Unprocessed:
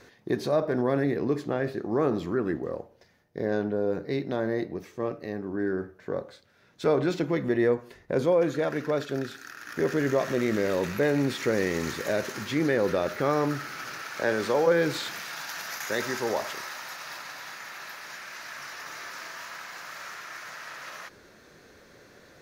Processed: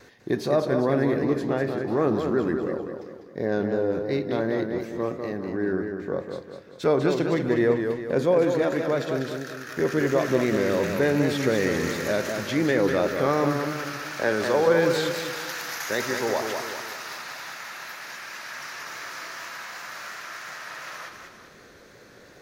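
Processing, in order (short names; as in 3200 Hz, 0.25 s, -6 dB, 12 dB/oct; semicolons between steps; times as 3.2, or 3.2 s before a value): vibrato 2.7 Hz 28 cents; warbling echo 0.198 s, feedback 47%, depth 87 cents, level -6 dB; gain +2 dB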